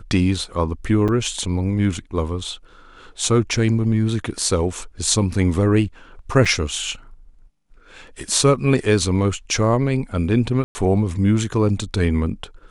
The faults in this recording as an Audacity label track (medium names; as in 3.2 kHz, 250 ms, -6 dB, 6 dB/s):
1.080000	1.090000	dropout 6.4 ms
6.450000	6.460000	dropout 5.8 ms
10.640000	10.750000	dropout 110 ms